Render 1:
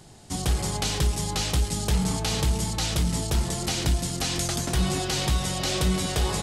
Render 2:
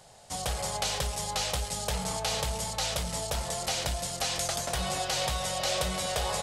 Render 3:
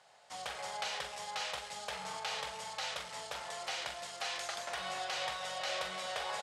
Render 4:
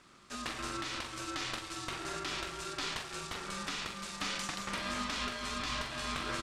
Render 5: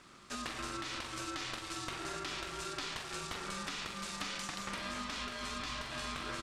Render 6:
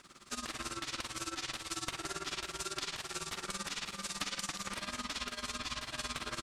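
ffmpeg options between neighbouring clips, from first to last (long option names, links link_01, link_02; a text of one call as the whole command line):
ffmpeg -i in.wav -af "lowshelf=frequency=430:width_type=q:width=3:gain=-8,volume=-2.5dB" out.wav
ffmpeg -i in.wav -filter_complex "[0:a]bandpass=frequency=1700:width_type=q:width=0.83:csg=0,asplit=2[link_01][link_02];[link_02]adelay=43,volume=-7.5dB[link_03];[link_01][link_03]amix=inputs=2:normalize=0,volume=-3dB" out.wav
ffmpeg -i in.wav -af "alimiter=level_in=4.5dB:limit=-24dB:level=0:latency=1:release=258,volume=-4.5dB,aeval=exprs='val(0)*sin(2*PI*500*n/s)':channel_layout=same,volume=6dB" out.wav
ffmpeg -i in.wav -af "acompressor=threshold=-39dB:ratio=6,volume=2.5dB" out.wav
ffmpeg -i in.wav -af "highshelf=frequency=4500:gain=8,tremolo=f=18:d=0.84,volume=2dB" out.wav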